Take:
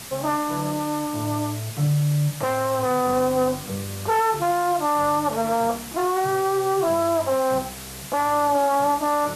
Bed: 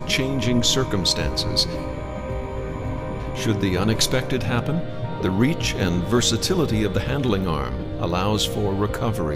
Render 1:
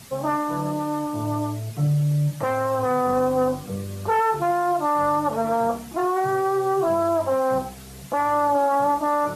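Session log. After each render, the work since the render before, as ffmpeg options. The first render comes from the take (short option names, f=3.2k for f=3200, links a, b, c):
-af "afftdn=nr=9:nf=-36"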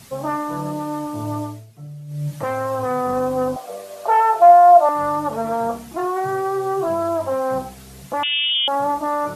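-filter_complex "[0:a]asettb=1/sr,asplit=3[a][b][c];[a]atrim=end=3.564[d];[b]atrim=start=3.56:end=4.89,asetpts=PTS-STARTPTS,afade=t=in:d=0.004:c=qsin,afade=t=out:st=1.326:d=0.004:c=qsin,highpass=f=650:t=q:w=7.7[e];[c]atrim=start=4.886[f];[d][e]acrossfade=d=0.004:c1=hsin:c2=qsin[g];[g][f]acrossfade=d=0.004:c1=qsin:c2=hsin,asettb=1/sr,asplit=3[h][i][j];[h]atrim=end=8.234[k];[i]atrim=start=8.23:end=8.68,asetpts=PTS-STARTPTS,afade=t=in:d=0.004:c=qsin,afade=t=out:st=0.446:d=0.004:c=qsin,lowpass=f=3.2k:t=q:w=0.5098,lowpass=f=3.2k:t=q:w=0.6013,lowpass=f=3.2k:t=q:w=0.9,lowpass=f=3.2k:t=q:w=2.563,afreqshift=-3800[l];[j]atrim=start=8.676[m];[k][l]acrossfade=d=0.004:c1=hsin:c2=qsin[n];[n][m]acrossfade=d=0.004:c1=qsin:c2=hsin,asplit=3[o][p][q];[o]atrim=end=1.67,asetpts=PTS-STARTPTS,afade=t=out:st=1.39:d=0.28:silence=0.177828[r];[p]atrim=start=1.67:end=2.07,asetpts=PTS-STARTPTS,volume=-15dB[s];[q]atrim=start=2.07,asetpts=PTS-STARTPTS,afade=t=in:d=0.28:silence=0.177828[t];[r][s][t]concat=n=3:v=0:a=1"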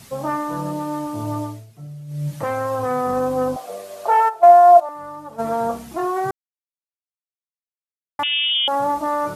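-filter_complex "[0:a]asplit=3[a][b][c];[a]afade=t=out:st=4.28:d=0.02[d];[b]agate=range=-13dB:threshold=-12dB:ratio=16:release=100:detection=peak,afade=t=in:st=4.28:d=0.02,afade=t=out:st=5.38:d=0.02[e];[c]afade=t=in:st=5.38:d=0.02[f];[d][e][f]amix=inputs=3:normalize=0,asplit=3[g][h][i];[g]atrim=end=6.31,asetpts=PTS-STARTPTS,afade=t=out:st=6.306:d=0.004:c=hsin[j];[h]atrim=start=6.31:end=8.19,asetpts=PTS-STARTPTS,volume=0[k];[i]atrim=start=8.19,asetpts=PTS-STARTPTS,afade=t=in:d=0.004:c=hsin[l];[j][k][l]concat=n=3:v=0:a=1"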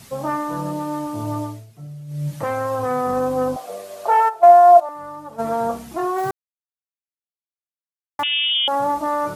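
-filter_complex "[0:a]asettb=1/sr,asplit=3[a][b][c];[a]atrim=end=6.184[d];[b]atrim=start=6.18:end=8.22,asetpts=PTS-STARTPTS,afade=t=in:d=0.004:c=qsin,afade=t=out:st=2.036:d=0.004:c=qsin,acrusher=bits=7:dc=4:mix=0:aa=0.000001[e];[c]atrim=start=8.216[f];[d][e]acrossfade=d=0.004:c1=hsin:c2=qsin[g];[g][f]acrossfade=d=0.004:c1=qsin:c2=hsin"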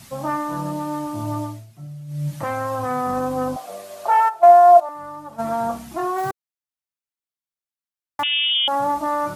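-af "equalizer=f=450:t=o:w=0.26:g=-13"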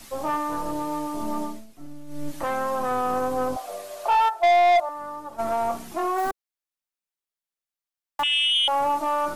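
-filter_complex "[0:a]aeval=exprs='(tanh(5.62*val(0)+0.05)-tanh(0.05))/5.62':c=same,acrossover=split=220|970|6000[a][b][c][d];[a]aeval=exprs='abs(val(0))':c=same[e];[e][b][c][d]amix=inputs=4:normalize=0"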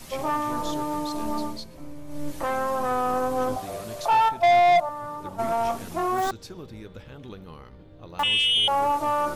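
-filter_complex "[1:a]volume=-20dB[a];[0:a][a]amix=inputs=2:normalize=0"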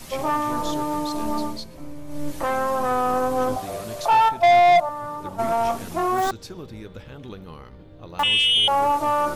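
-af "volume=3dB"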